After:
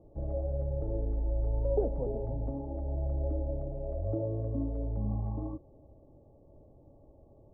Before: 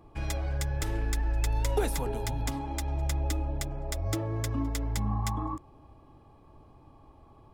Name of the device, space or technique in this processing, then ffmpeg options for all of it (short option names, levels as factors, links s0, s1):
under water: -af "lowpass=f=620:w=0.5412,lowpass=f=620:w=1.3066,equalizer=f=570:t=o:w=0.41:g=11.5,volume=0.75"